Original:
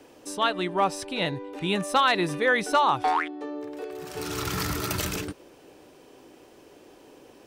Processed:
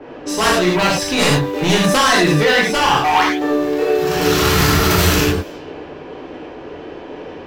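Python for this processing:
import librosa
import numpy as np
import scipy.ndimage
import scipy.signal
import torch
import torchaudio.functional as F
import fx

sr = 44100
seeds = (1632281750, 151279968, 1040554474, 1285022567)

p1 = fx.quant_companded(x, sr, bits=4)
p2 = x + (p1 * 10.0 ** (-6.0 / 20.0))
p3 = fx.peak_eq(p2, sr, hz=9200.0, db=-13.0, octaves=0.43)
p4 = fx.rider(p3, sr, range_db=4, speed_s=0.5)
p5 = fx.fold_sine(p4, sr, drive_db=8, ceiling_db=-11.0)
p6 = fx.env_lowpass(p5, sr, base_hz=1200.0, full_db=-18.5)
p7 = fx.rev_gated(p6, sr, seeds[0], gate_ms=130, shape='flat', drr_db=-4.5)
p8 = fx.env_flatten(p7, sr, amount_pct=70, at=(1.84, 2.51))
y = p8 * 10.0 ** (-4.5 / 20.0)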